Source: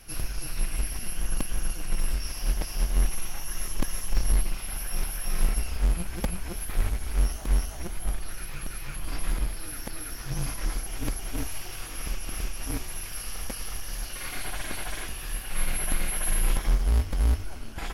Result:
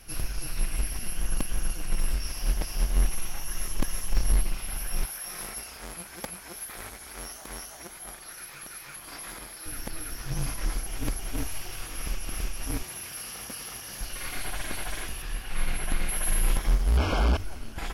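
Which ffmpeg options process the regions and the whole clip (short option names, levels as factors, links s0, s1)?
-filter_complex "[0:a]asettb=1/sr,asplit=3[s0][s1][s2];[s0]atrim=end=5.054[s3];[s1]atrim=start=5.05:end=9.66,asetpts=PTS-STARTPTS,afade=t=in:d=0.004:c=qsin,afade=t=out:st=4.606:d=0.004:c=qsin,highpass=f=670:p=1,equalizer=f=2800:w=3.7:g=-5[s4];[s2]atrim=start=9.656[s5];[s3][s4]acrossfade=d=0.004:c1=hsin:c2=qsin[s6];[s6][s5]acrossfade=d=0.004:c1=qsin:c2=hsin,asettb=1/sr,asplit=3[s7][s8][s9];[s7]atrim=end=12.834[s10];[s8]atrim=start=12.83:end=14.01,asetpts=PTS-STARTPTS,afade=t=in:d=0.004:c=qsin,afade=t=out:st=1.176:d=0.004:c=qsin,highpass=120,asoftclip=type=hard:threshold=0.0237[s11];[s9]atrim=start=14.006[s12];[s10][s11]acrossfade=d=0.004:c1=hsin:c2=qsin[s13];[s13][s12]acrossfade=d=0.004:c1=qsin:c2=hsin,asettb=1/sr,asplit=3[s14][s15][s16];[s14]atrim=end=15.224[s17];[s15]atrim=start=15.22:end=16.09,asetpts=PTS-STARTPTS,afade=t=in:d=0.004:c=qsin,afade=t=out:st=0.866:d=0.004:c=qsin,highshelf=f=9600:g=-12,bandreject=f=580:w=17[s18];[s16]atrim=start=16.086[s19];[s17][s18]acrossfade=d=0.004:c1=hsin:c2=qsin[s20];[s20][s19]acrossfade=d=0.004:c1=qsin:c2=hsin,asettb=1/sr,asplit=3[s21][s22][s23];[s21]atrim=end=16.974[s24];[s22]atrim=start=16.97:end=17.37,asetpts=PTS-STARTPTS,afade=t=in:d=0.004:c=qsin,afade=t=out:st=0.396:d=0.004:c=qsin,acrossover=split=6600[s25][s26];[s26]acompressor=threshold=0.00141:ratio=4:attack=1:release=60[s27];[s25][s27]amix=inputs=2:normalize=0,asplit=2[s28][s29];[s29]highpass=f=720:p=1,volume=56.2,asoftclip=type=tanh:threshold=0.211[s30];[s28][s30]amix=inputs=2:normalize=0,lowpass=f=1100:p=1,volume=0.501,asuperstop=centerf=1900:order=20:qfactor=4.8[s31];[s23]atrim=start=17.366[s32];[s24][s31]acrossfade=d=0.004:c1=hsin:c2=qsin[s33];[s33][s32]acrossfade=d=0.004:c1=qsin:c2=hsin"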